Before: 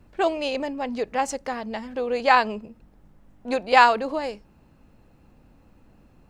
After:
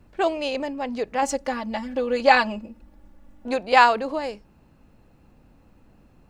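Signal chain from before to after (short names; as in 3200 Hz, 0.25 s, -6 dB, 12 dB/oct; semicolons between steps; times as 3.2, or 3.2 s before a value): 1.22–3.48 comb 3.5 ms, depth 88%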